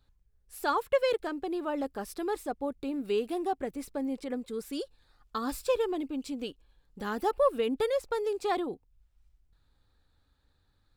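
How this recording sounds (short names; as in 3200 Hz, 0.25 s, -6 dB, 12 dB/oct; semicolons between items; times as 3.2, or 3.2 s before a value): noise floor -70 dBFS; spectral tilt -2.5 dB/oct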